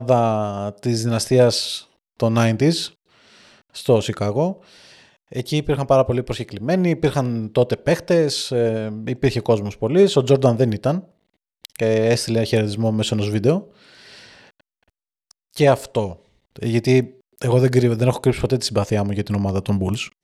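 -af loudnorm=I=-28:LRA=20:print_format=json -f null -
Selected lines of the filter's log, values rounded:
"input_i" : "-19.8",
"input_tp" : "-4.0",
"input_lra" : "3.4",
"input_thresh" : "-30.6",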